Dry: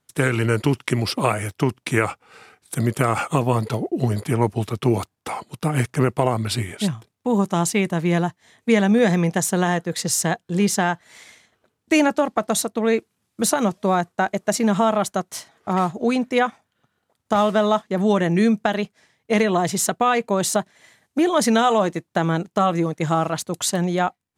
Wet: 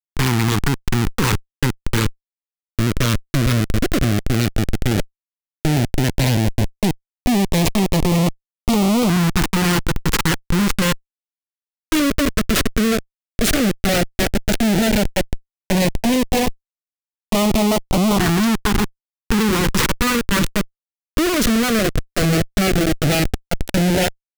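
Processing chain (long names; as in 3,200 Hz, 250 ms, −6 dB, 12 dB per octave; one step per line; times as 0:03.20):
parametric band 230 Hz +7 dB 1.2 octaves
harmonic generator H 6 −17 dB, 8 −7 dB, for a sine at −1.5 dBFS
comparator with hysteresis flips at −19 dBFS
auto-filter notch saw up 0.11 Hz 550–1,700 Hz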